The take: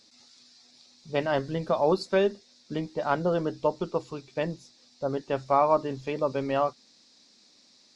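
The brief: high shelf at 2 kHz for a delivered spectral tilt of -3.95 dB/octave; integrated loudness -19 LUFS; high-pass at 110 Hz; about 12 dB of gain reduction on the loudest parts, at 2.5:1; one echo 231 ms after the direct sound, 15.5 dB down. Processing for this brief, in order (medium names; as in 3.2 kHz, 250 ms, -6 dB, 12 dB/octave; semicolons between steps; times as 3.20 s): high-pass 110 Hz; treble shelf 2 kHz +6.5 dB; compression 2.5:1, threshold -36 dBFS; delay 231 ms -15.5 dB; trim +18.5 dB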